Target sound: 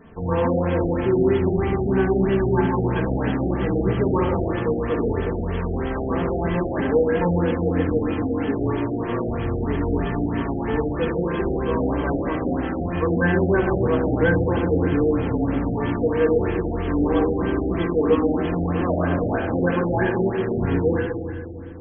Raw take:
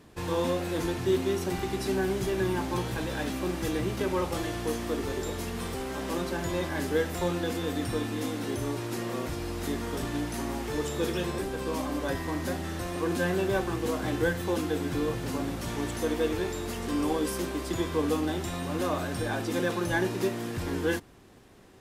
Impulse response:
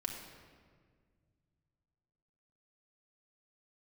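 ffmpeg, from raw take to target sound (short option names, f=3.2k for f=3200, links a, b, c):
-filter_complex "[0:a]aexciter=amount=10.9:drive=4.5:freq=4.2k,acontrast=84[a];[1:a]atrim=start_sample=2205,asetrate=38808,aresample=44100[b];[a][b]afir=irnorm=-1:irlink=0,afftfilt=real='re*lt(b*sr/1024,780*pow(3400/780,0.5+0.5*sin(2*PI*3.1*pts/sr)))':imag='im*lt(b*sr/1024,780*pow(3400/780,0.5+0.5*sin(2*PI*3.1*pts/sr)))':win_size=1024:overlap=0.75"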